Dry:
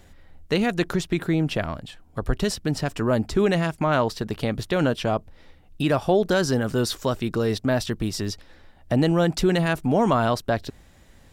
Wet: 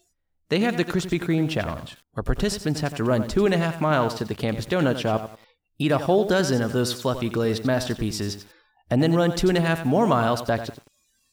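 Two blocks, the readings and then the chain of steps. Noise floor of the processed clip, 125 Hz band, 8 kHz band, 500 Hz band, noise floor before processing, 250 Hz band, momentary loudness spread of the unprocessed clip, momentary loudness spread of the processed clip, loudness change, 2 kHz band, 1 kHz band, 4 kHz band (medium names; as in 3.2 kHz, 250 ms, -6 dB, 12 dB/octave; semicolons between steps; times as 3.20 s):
-71 dBFS, 0.0 dB, +0.5 dB, +0.5 dB, -52 dBFS, +0.5 dB, 8 LU, 8 LU, +0.5 dB, +0.5 dB, +0.5 dB, +0.5 dB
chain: spectral noise reduction 28 dB; bit-crushed delay 91 ms, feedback 35%, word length 7-bit, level -10.5 dB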